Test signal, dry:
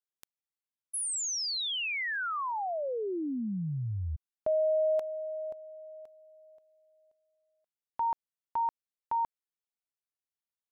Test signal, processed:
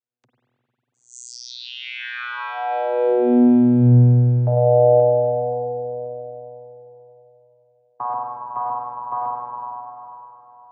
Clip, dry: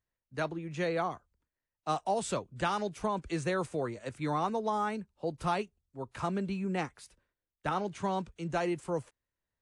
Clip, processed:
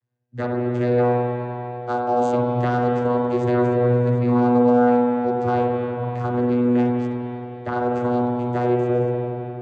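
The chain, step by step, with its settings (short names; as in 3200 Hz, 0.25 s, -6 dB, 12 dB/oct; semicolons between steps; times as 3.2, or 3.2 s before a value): vocoder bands 16, saw 122 Hz; spring tank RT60 3.6 s, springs 45/49 ms, chirp 65 ms, DRR -2 dB; gain +7 dB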